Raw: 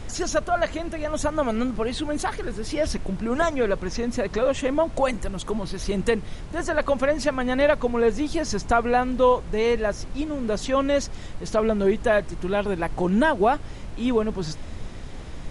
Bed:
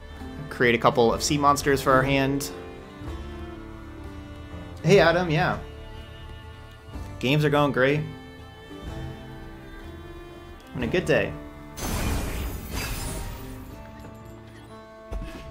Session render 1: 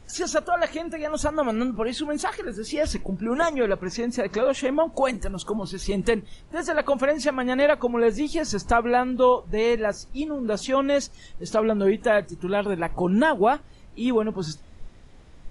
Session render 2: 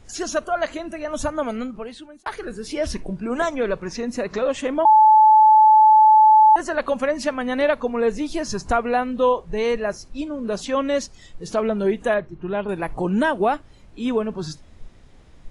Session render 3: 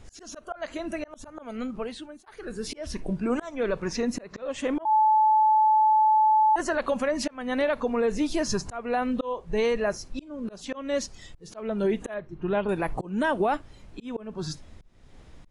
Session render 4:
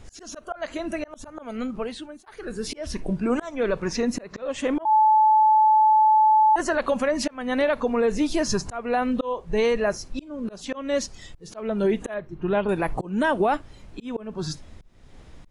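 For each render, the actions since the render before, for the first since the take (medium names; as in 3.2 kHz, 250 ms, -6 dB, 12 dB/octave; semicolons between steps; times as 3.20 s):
noise print and reduce 13 dB
1.32–2.26 s: fade out; 4.85–6.56 s: bleep 866 Hz -8.5 dBFS; 12.14–12.69 s: distance through air 330 m
slow attack 383 ms; peak limiter -16.5 dBFS, peak gain reduction 8.5 dB
trim +3 dB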